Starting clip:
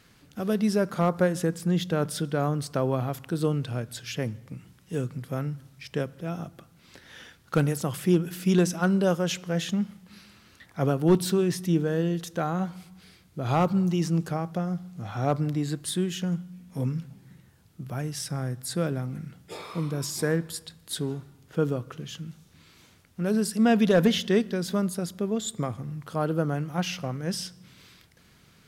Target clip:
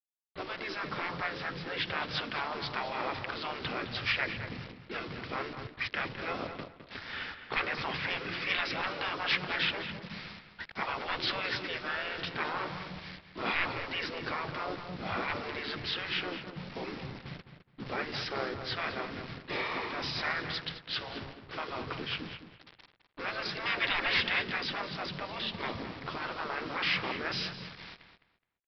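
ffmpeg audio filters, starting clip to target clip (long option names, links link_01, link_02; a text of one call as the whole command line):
ffmpeg -i in.wav -filter_complex "[0:a]dynaudnorm=framelen=680:gausssize=5:maxgain=6dB,afftfilt=real='re*lt(hypot(re,im),0.178)':imag='im*lt(hypot(re,im),0.178)':win_size=1024:overlap=0.75,equalizer=frequency=2200:width_type=o:width=0.57:gain=9.5,agate=range=-31dB:threshold=-46dB:ratio=16:detection=peak,aresample=11025,acrusher=bits=6:mix=0:aa=0.000001,aresample=44100,asplit=4[link_01][link_02][link_03][link_04];[link_02]asetrate=22050,aresample=44100,atempo=2,volume=-13dB[link_05];[link_03]asetrate=35002,aresample=44100,atempo=1.25992,volume=-5dB[link_06];[link_04]asetrate=37084,aresample=44100,atempo=1.18921,volume=-7dB[link_07];[link_01][link_05][link_06][link_07]amix=inputs=4:normalize=0,asplit=2[link_08][link_09];[link_09]adelay=210,lowpass=frequency=3300:poles=1,volume=-9dB,asplit=2[link_10][link_11];[link_11]adelay=210,lowpass=frequency=3300:poles=1,volume=0.22,asplit=2[link_12][link_13];[link_13]adelay=210,lowpass=frequency=3300:poles=1,volume=0.22[link_14];[link_10][link_12][link_14]amix=inputs=3:normalize=0[link_15];[link_08][link_15]amix=inputs=2:normalize=0,volume=-4dB" out.wav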